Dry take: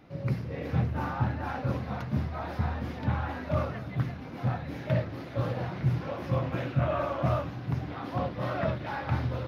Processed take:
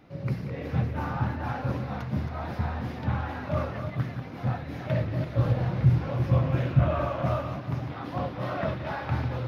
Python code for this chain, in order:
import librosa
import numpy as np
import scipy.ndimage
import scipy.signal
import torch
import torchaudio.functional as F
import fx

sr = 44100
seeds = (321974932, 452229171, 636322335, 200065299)

y = fx.reverse_delay(x, sr, ms=195, wet_db=-8)
y = fx.low_shelf(y, sr, hz=140.0, db=11.5, at=(5.0, 7.09))
y = fx.echo_stepped(y, sr, ms=183, hz=2500.0, octaves=-1.4, feedback_pct=70, wet_db=-11.0)